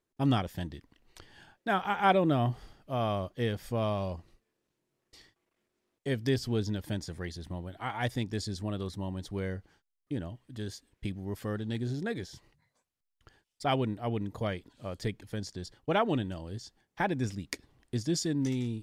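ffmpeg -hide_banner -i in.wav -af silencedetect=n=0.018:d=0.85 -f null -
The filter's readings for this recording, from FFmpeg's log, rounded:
silence_start: 4.14
silence_end: 6.06 | silence_duration: 1.92
silence_start: 12.23
silence_end: 13.62 | silence_duration: 1.39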